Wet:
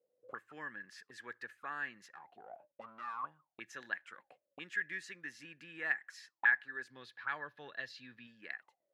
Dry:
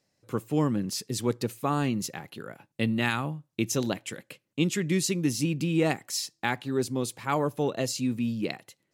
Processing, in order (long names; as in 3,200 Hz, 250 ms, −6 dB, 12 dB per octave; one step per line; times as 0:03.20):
0:02.08–0:03.24: tube saturation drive 31 dB, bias 0.35
0:06.90–0:08.27: octave-band graphic EQ 125/2,000/4,000/8,000 Hz +7/−4/+12/−12 dB
envelope filter 490–1,700 Hz, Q 20, up, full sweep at −29 dBFS
level +11.5 dB